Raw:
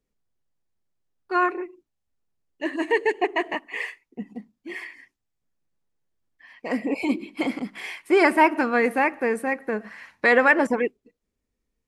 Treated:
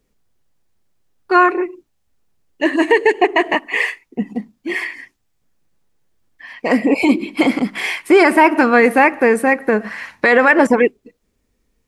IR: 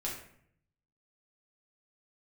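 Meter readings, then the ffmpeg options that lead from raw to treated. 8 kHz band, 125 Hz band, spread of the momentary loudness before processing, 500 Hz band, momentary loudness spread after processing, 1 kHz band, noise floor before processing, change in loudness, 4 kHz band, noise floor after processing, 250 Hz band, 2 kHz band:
+10.5 dB, can't be measured, 20 LU, +9.0 dB, 14 LU, +8.0 dB, −81 dBFS, +8.0 dB, +10.0 dB, −67 dBFS, +10.0 dB, +8.0 dB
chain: -filter_complex "[0:a]asplit=2[link_01][link_02];[link_02]acompressor=threshold=-27dB:ratio=6,volume=-1.5dB[link_03];[link_01][link_03]amix=inputs=2:normalize=0,alimiter=level_in=9dB:limit=-1dB:release=50:level=0:latency=1,volume=-1dB"

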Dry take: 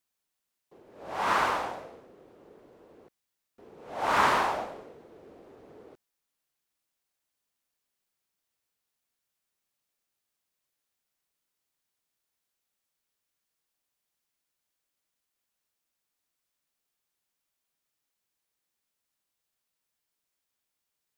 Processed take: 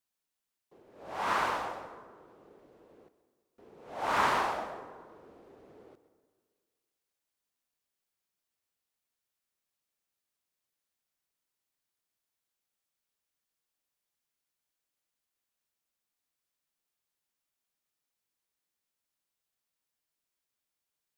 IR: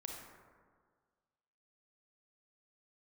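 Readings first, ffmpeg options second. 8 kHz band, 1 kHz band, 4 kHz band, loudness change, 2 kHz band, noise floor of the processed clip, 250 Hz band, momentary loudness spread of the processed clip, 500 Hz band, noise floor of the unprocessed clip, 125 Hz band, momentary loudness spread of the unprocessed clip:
−4.0 dB, −3.5 dB, −4.0 dB, −4.0 dB, −4.0 dB, below −85 dBFS, −4.0 dB, 19 LU, −4.0 dB, −84 dBFS, −4.0 dB, 19 LU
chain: -filter_complex "[0:a]asplit=2[link_01][link_02];[1:a]atrim=start_sample=2205,adelay=129[link_03];[link_02][link_03]afir=irnorm=-1:irlink=0,volume=-10.5dB[link_04];[link_01][link_04]amix=inputs=2:normalize=0,volume=-4dB"

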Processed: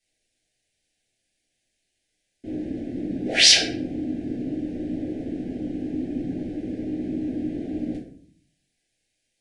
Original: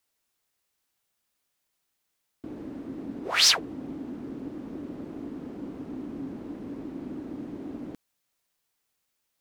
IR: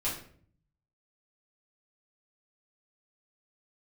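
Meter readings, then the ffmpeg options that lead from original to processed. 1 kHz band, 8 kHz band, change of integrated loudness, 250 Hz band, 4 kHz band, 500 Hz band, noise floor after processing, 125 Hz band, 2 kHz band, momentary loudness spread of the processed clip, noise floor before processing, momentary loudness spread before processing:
−4.0 dB, +5.5 dB, +6.0 dB, +8.5 dB, +6.0 dB, +6.5 dB, −77 dBFS, +9.0 dB, +6.0 dB, 16 LU, −79 dBFS, 20 LU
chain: -filter_complex "[0:a]asuperstop=centerf=1100:order=8:qfactor=1.3[link_01];[1:a]atrim=start_sample=2205[link_02];[link_01][link_02]afir=irnorm=-1:irlink=0,aresample=22050,aresample=44100,volume=1dB"

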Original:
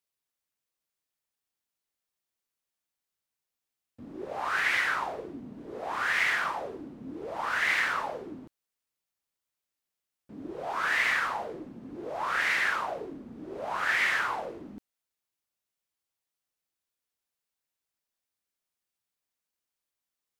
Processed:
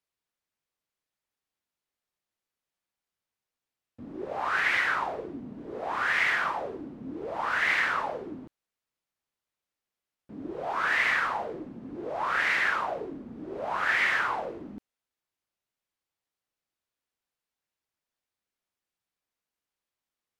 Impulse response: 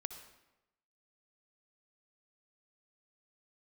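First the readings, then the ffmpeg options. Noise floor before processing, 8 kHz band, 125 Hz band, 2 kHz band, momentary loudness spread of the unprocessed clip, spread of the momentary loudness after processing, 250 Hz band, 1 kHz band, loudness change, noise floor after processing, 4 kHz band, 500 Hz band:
below −85 dBFS, −4.0 dB, +2.5 dB, +1.0 dB, 18 LU, 17 LU, +2.5 dB, +2.0 dB, +1.0 dB, below −85 dBFS, −0.5 dB, +2.5 dB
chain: -af "aemphasis=mode=reproduction:type=cd,volume=2dB"

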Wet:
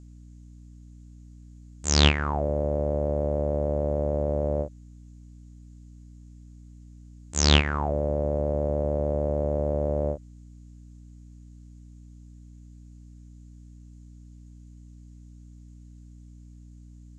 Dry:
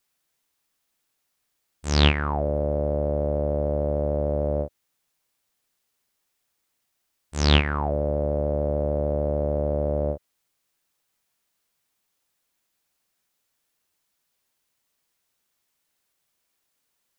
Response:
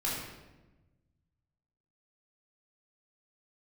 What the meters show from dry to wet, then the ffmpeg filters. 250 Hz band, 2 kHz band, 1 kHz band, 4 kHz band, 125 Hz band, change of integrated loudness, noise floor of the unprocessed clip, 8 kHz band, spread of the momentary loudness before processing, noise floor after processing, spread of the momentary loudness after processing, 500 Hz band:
−1.5 dB, −0.5 dB, −1.0 dB, +1.5 dB, −1.5 dB, −1.0 dB, −76 dBFS, can't be measured, 7 LU, −48 dBFS, 9 LU, −1.5 dB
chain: -af "aeval=exprs='val(0)+0.00631*(sin(2*PI*60*n/s)+sin(2*PI*2*60*n/s)/2+sin(2*PI*3*60*n/s)/3+sin(2*PI*4*60*n/s)/4+sin(2*PI*5*60*n/s)/5)':channel_layout=same,aeval=exprs='0.794*(cos(1*acos(clip(val(0)/0.794,-1,1)))-cos(1*PI/2))+0.00794*(cos(7*acos(clip(val(0)/0.794,-1,1)))-cos(7*PI/2))':channel_layout=same,lowpass=frequency=7000:width_type=q:width=5.7,volume=-1dB"

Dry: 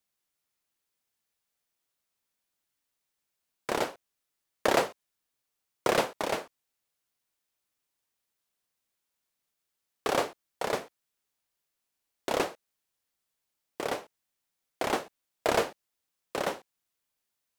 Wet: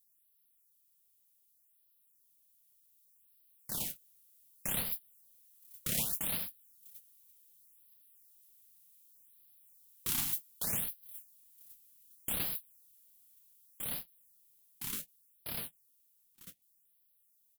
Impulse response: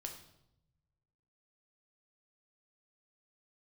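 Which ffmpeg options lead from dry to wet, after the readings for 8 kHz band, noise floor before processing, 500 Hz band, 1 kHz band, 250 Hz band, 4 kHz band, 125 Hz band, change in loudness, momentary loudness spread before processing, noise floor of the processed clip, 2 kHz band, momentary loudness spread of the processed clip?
+3.0 dB, −84 dBFS, −23.5 dB, −21.0 dB, −11.0 dB, −6.0 dB, −1.5 dB, −4.0 dB, 11 LU, −72 dBFS, −13.0 dB, 22 LU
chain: -filter_complex "[0:a]aeval=exprs='val(0)+0.5*0.0335*sgn(val(0))':channel_layout=same,equalizer=frequency=74:width=1:gain=-6,dynaudnorm=framelen=340:gausssize=21:maxgain=11.5dB,asplit=2[link_01][link_02];[link_02]aecho=0:1:962|1924|2886|3848:0.106|0.0583|0.032|0.0176[link_03];[link_01][link_03]amix=inputs=2:normalize=0,agate=range=-35dB:threshold=-24dB:ratio=16:detection=peak,asoftclip=type=hard:threshold=-12.5dB,firequalizer=gain_entry='entry(160,0);entry(380,-24);entry(3200,-6);entry(4800,-6);entry(12000,10)':delay=0.05:min_phase=1,afftfilt=real='re*(1-between(b*sr/1024,510*pow(7500/510,0.5+0.5*sin(2*PI*0.66*pts/sr))/1.41,510*pow(7500/510,0.5+0.5*sin(2*PI*0.66*pts/sr))*1.41))':imag='im*(1-between(b*sr/1024,510*pow(7500/510,0.5+0.5*sin(2*PI*0.66*pts/sr))/1.41,510*pow(7500/510,0.5+0.5*sin(2*PI*0.66*pts/sr))*1.41))':win_size=1024:overlap=0.75,volume=-7.5dB"

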